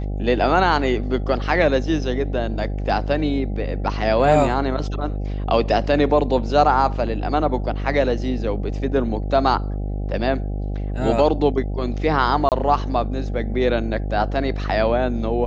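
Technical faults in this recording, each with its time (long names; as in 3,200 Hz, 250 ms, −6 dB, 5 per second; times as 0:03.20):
mains buzz 50 Hz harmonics 16 −25 dBFS
0:12.49–0:12.52: drop-out 28 ms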